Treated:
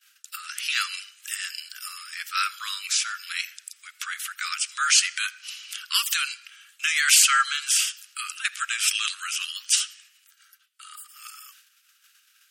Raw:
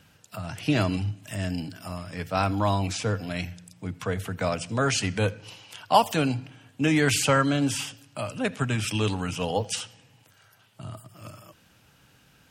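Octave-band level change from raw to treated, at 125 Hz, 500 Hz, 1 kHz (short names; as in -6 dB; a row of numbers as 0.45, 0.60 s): under -40 dB, under -40 dB, -3.0 dB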